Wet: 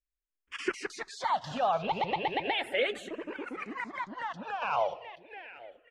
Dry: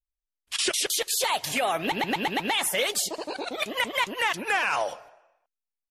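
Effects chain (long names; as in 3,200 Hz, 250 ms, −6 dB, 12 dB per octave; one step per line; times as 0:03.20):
low-pass filter 2,300 Hz 12 dB per octave
repeating echo 829 ms, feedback 18%, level −16.5 dB
0:03.00–0:04.62: downward compressor 4 to 1, threshold −31 dBFS, peak gain reduction 8 dB
frequency shifter mixed with the dry sound −0.35 Hz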